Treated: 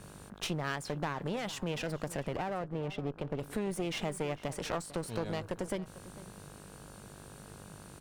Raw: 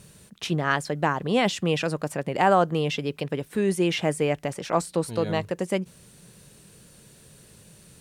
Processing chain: mains buzz 50 Hz, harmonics 33, -53 dBFS -2 dB/octave; compression 6:1, threshold -29 dBFS, peak gain reduction 14 dB; 2.36–3.39 s: low-pass 1 kHz 6 dB/octave; one-sided clip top -42 dBFS; echo from a far wall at 77 m, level -16 dB; tape noise reduction on one side only decoder only

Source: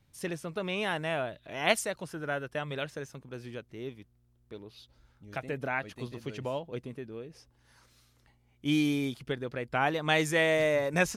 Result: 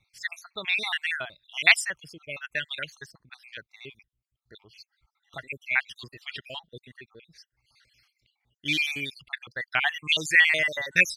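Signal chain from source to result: random holes in the spectrogram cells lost 56%; graphic EQ 250/500/1000/2000/4000 Hz -8/-8/-5/+9/+9 dB; reverb removal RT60 1.1 s; bass shelf 180 Hz -10 dB; tape noise reduction on one side only decoder only; trim +4.5 dB

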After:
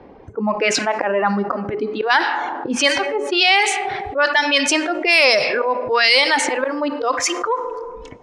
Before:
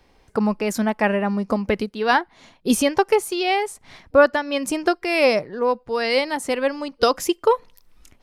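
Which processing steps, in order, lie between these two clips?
treble shelf 3.5 kHz -6 dB; hum notches 60/120/180/240/300/360/420 Hz; reverb removal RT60 0.77 s; slow attack 204 ms; frequency weighting ITU-R 468; spectral noise reduction 11 dB; plate-style reverb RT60 1.3 s, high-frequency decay 0.9×, DRR 16 dB; level-controlled noise filter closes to 360 Hz, open at -17 dBFS; level flattener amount 70%; trim +3.5 dB

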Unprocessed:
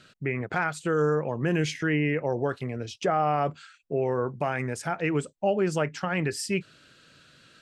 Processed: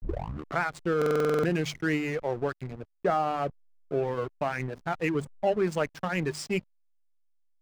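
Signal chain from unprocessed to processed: tape start-up on the opening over 0.61 s; reverb removal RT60 1.2 s; hum notches 50/100/150/200/250 Hz; level-controlled noise filter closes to 440 Hz, open at -26.5 dBFS; hysteresis with a dead band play -33 dBFS; buffer glitch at 0.97 s, samples 2048, times 9

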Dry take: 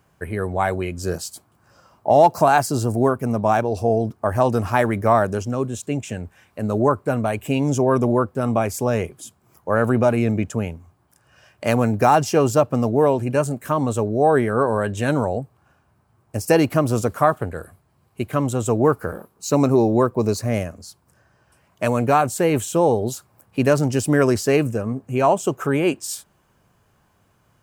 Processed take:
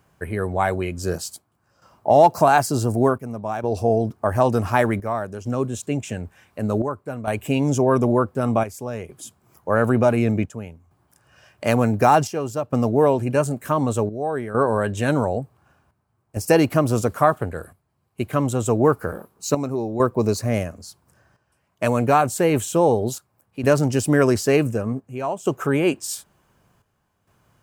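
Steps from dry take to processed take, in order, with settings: square tremolo 0.55 Hz, depth 65%, duty 75%

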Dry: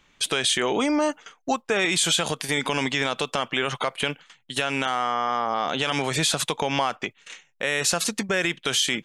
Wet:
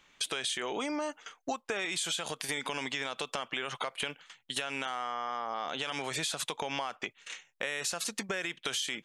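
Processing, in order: bass shelf 280 Hz -9 dB; compression 5:1, threshold -30 dBFS, peak gain reduction 11 dB; trim -1.5 dB

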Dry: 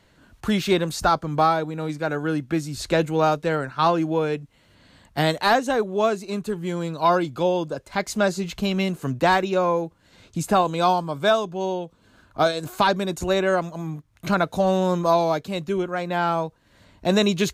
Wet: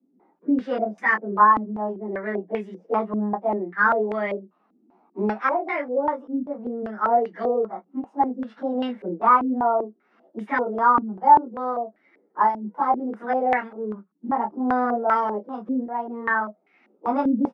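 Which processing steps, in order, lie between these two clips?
frequency-domain pitch shifter +5 st; Chebyshev high-pass 180 Hz, order 8; doubling 24 ms -8.5 dB; step-sequenced low-pass 5.1 Hz 270–2100 Hz; trim -4 dB

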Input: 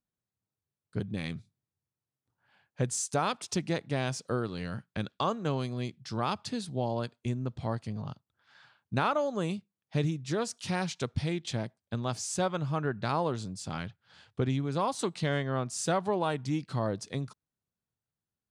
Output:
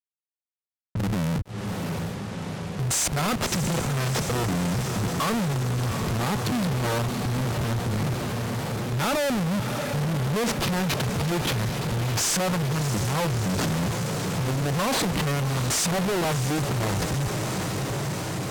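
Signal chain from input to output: harmonic-percussive split percussive -14 dB; Schmitt trigger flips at -49 dBFS; high-pass 70 Hz 12 dB/octave; on a send: echo that smears into a reverb 680 ms, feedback 70%, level -12 dB; on the sum: waveshaping leveller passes 5; level-controlled noise filter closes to 1.1 kHz, open at -30 dBFS; trim +3 dB

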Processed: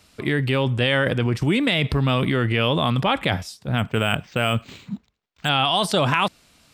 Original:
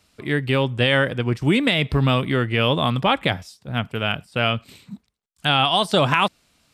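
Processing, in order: in parallel at -1 dB: compressor with a negative ratio -25 dBFS, ratio -0.5; 3.78–5.49 s: on the sum: decimation joined by straight lines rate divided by 4×; trim -3 dB

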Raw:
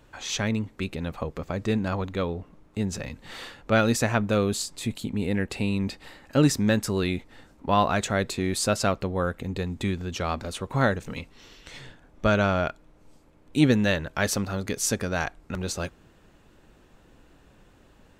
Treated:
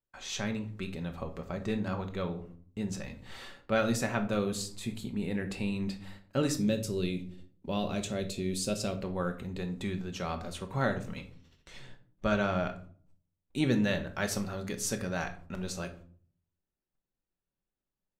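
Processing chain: 6.57–8.95 s: high-order bell 1.2 kHz -11 dB; gate -47 dBFS, range -31 dB; simulated room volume 460 m³, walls furnished, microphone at 1.1 m; trim -8 dB

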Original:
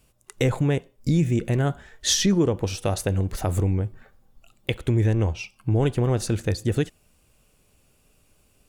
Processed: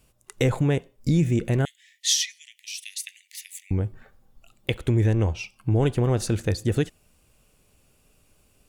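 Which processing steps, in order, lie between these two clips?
1.65–3.71 s: steep high-pass 1.9 kHz 96 dB/octave

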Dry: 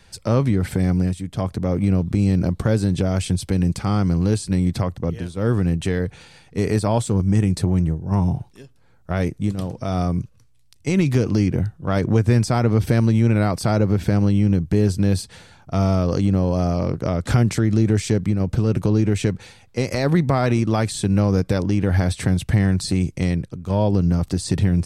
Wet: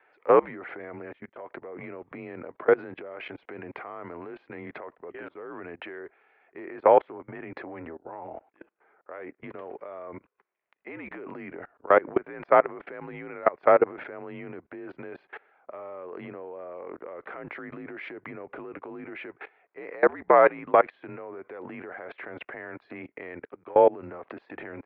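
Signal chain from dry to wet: mistuned SSB -71 Hz 480–2300 Hz; level held to a coarse grid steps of 24 dB; trim +8.5 dB

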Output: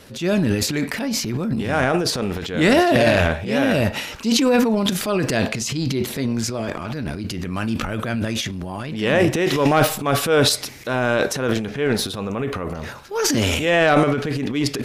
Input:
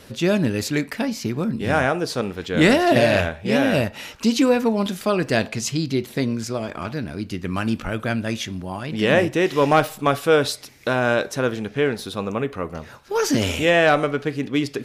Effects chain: transient shaper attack -5 dB, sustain +11 dB

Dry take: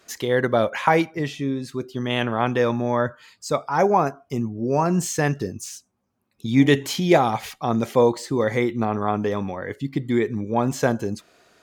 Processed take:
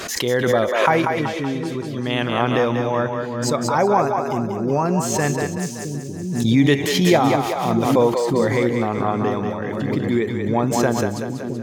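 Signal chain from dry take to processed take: on a send: two-band feedback delay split 370 Hz, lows 666 ms, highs 189 ms, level -5 dB; on the sum: swell ahead of each attack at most 42 dB/s

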